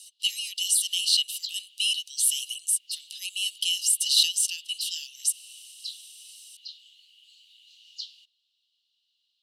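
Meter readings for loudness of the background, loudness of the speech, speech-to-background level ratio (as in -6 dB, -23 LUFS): -40.5 LUFS, -24.5 LUFS, 16.0 dB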